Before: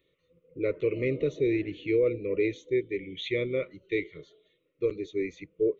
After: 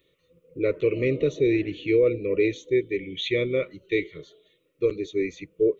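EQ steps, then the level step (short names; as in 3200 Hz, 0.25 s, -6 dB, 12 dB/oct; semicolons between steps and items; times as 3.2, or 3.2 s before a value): high shelf 4100 Hz +5.5 dB; notch 2100 Hz, Q 19; +4.5 dB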